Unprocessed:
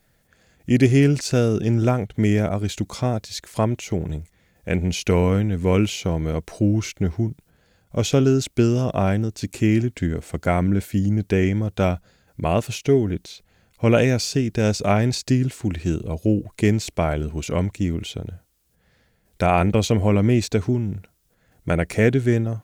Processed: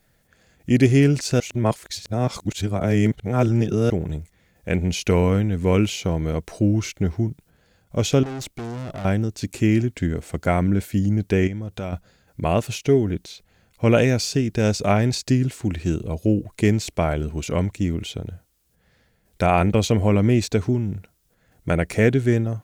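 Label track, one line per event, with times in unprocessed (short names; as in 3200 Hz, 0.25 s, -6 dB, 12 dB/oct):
1.400000	3.900000	reverse
8.230000	9.050000	tube stage drive 29 dB, bias 0.45
11.470000	11.930000	compressor 3:1, threshold -28 dBFS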